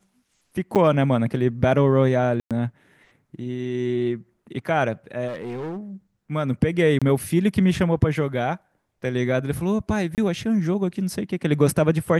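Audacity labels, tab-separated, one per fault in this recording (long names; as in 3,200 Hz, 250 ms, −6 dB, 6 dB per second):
0.750000	0.760000	drop-out 7.8 ms
2.400000	2.510000	drop-out 107 ms
5.270000	5.790000	clipping −27.5 dBFS
6.990000	7.020000	drop-out 26 ms
10.150000	10.180000	drop-out 28 ms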